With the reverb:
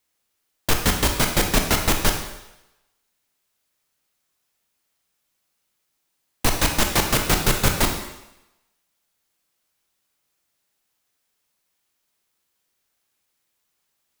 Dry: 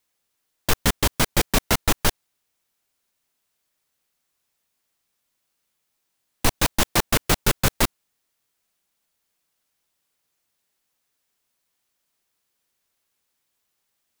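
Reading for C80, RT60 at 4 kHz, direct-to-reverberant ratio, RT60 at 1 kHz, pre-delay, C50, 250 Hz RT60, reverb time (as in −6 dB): 8.5 dB, 0.95 s, 3.0 dB, 0.95 s, 19 ms, 6.0 dB, 0.85 s, 0.90 s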